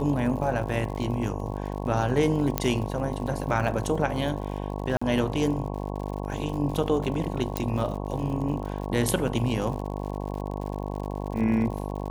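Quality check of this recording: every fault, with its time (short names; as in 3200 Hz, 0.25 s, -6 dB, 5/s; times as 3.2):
buzz 50 Hz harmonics 22 -32 dBFS
crackle 84/s -35 dBFS
2.58 pop -7 dBFS
4.97–5.01 gap 45 ms
7.57 pop -11 dBFS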